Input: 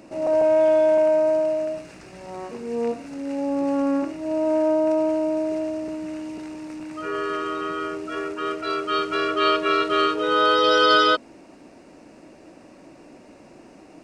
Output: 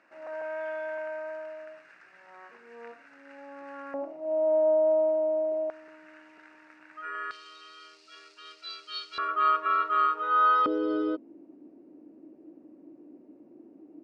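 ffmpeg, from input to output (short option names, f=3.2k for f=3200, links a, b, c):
-af "asetnsamples=n=441:p=0,asendcmd='3.94 bandpass f 670;5.7 bandpass f 1600;7.31 bandpass f 4400;9.18 bandpass f 1200;10.66 bandpass f 310',bandpass=f=1.6k:t=q:w=3.7:csg=0"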